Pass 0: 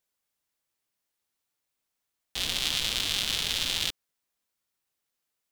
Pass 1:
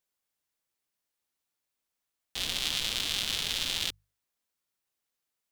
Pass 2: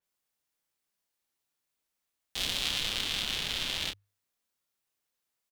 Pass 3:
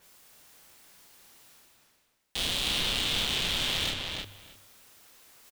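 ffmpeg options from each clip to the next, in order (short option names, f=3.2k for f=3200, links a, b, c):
-af "bandreject=f=50:t=h:w=6,bandreject=f=100:t=h:w=6,bandreject=f=150:t=h:w=6,volume=-2.5dB"
-filter_complex "[0:a]asplit=2[a][b];[b]adelay=30,volume=-6.5dB[c];[a][c]amix=inputs=2:normalize=0,adynamicequalizer=threshold=0.00891:dfrequency=4000:dqfactor=0.7:tfrequency=4000:tqfactor=0.7:attack=5:release=100:ratio=0.375:range=3.5:mode=cutabove:tftype=highshelf"
-filter_complex "[0:a]areverse,acompressor=mode=upward:threshold=-43dB:ratio=2.5,areverse,asoftclip=type=hard:threshold=-26dB,asplit=2[a][b];[b]adelay=311,lowpass=f=3.9k:p=1,volume=-3dB,asplit=2[c][d];[d]adelay=311,lowpass=f=3.9k:p=1,volume=0.16,asplit=2[e][f];[f]adelay=311,lowpass=f=3.9k:p=1,volume=0.16[g];[a][c][e][g]amix=inputs=4:normalize=0,volume=5dB"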